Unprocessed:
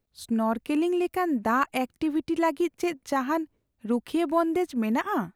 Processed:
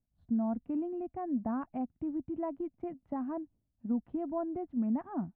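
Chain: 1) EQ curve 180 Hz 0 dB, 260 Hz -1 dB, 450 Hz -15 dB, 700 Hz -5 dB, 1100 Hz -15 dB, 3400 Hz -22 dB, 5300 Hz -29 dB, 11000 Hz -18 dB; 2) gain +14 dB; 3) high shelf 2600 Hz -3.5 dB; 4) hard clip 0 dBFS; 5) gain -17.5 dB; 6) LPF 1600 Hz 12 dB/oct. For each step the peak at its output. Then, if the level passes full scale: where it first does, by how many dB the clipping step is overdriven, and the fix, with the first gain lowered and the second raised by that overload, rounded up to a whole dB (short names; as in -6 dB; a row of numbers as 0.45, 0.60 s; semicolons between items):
-19.5, -5.5, -5.5, -5.5, -23.0, -23.0 dBFS; no overload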